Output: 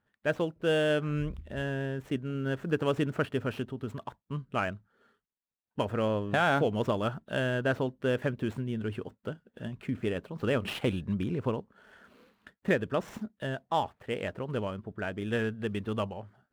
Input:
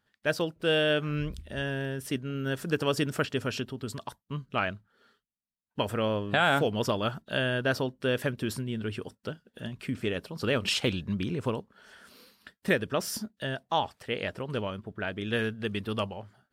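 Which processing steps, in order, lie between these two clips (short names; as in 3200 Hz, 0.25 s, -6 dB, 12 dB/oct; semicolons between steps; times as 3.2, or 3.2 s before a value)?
median filter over 9 samples; high shelf 2800 Hz -8 dB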